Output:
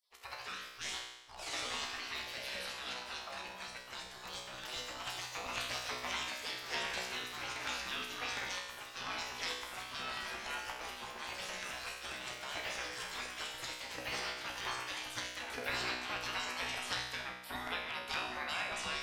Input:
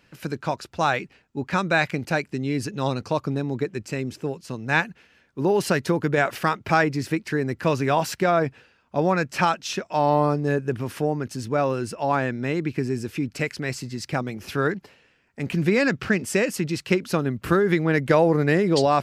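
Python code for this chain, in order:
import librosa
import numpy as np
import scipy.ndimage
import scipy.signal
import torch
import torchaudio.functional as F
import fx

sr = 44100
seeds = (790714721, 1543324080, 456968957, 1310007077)

y = fx.filter_lfo_notch(x, sr, shape='square', hz=4.3, low_hz=550.0, high_hz=6700.0, q=0.85)
y = fx.spec_gate(y, sr, threshold_db=-25, keep='weak')
y = fx.high_shelf(y, sr, hz=6300.0, db=-9.5)
y = fx.echo_pitch(y, sr, ms=103, semitones=2, count=3, db_per_echo=-3.0)
y = fx.low_shelf(y, sr, hz=140.0, db=-6.5)
y = fx.comb_fb(y, sr, f0_hz=62.0, decay_s=0.93, harmonics='all', damping=0.0, mix_pct=90)
y = y * 10.0 ** (14.5 / 20.0)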